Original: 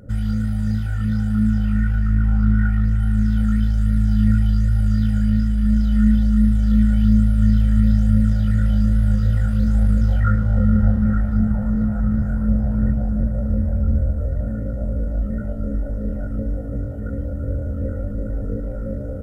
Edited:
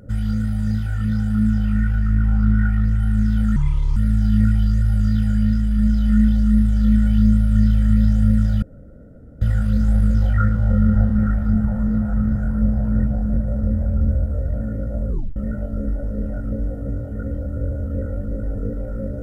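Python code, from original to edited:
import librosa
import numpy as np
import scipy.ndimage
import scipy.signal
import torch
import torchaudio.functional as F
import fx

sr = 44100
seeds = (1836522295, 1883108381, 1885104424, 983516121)

y = fx.edit(x, sr, fx.speed_span(start_s=3.56, length_s=0.27, speed=0.67),
    fx.room_tone_fill(start_s=8.49, length_s=0.79),
    fx.tape_stop(start_s=14.95, length_s=0.28), tone=tone)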